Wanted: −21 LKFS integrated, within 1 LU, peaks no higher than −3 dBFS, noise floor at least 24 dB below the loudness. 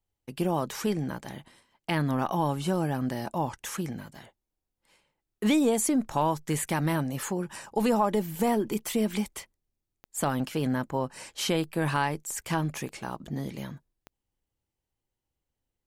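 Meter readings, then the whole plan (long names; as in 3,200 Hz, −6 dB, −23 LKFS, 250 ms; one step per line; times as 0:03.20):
number of clicks 5; integrated loudness −29.0 LKFS; sample peak −12.5 dBFS; target loudness −21.0 LKFS
→ click removal
level +8 dB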